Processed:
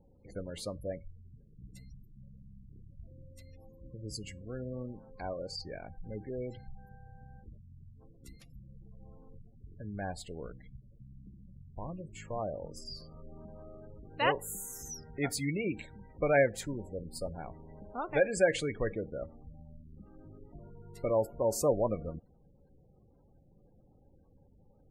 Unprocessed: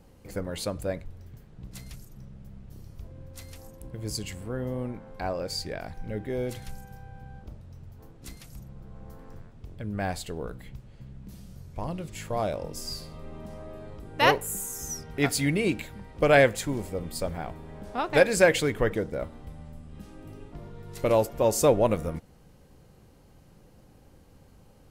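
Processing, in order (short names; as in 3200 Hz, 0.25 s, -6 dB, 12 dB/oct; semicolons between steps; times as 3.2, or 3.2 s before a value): spectral gate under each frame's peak -20 dB strong; resonator 560 Hz, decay 0.17 s, harmonics all, mix 40%; gain -3.5 dB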